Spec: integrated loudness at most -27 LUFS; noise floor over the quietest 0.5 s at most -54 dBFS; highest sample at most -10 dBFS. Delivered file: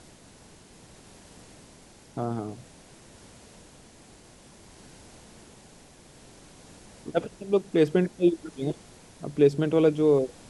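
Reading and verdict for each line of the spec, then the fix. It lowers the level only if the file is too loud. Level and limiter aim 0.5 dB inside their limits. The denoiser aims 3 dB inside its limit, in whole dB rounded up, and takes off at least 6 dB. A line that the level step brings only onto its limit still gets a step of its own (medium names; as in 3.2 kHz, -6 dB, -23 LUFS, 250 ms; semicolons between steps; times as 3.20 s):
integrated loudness -25.5 LUFS: fail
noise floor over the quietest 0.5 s -52 dBFS: fail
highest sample -9.0 dBFS: fail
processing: noise reduction 6 dB, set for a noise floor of -52 dBFS; trim -2 dB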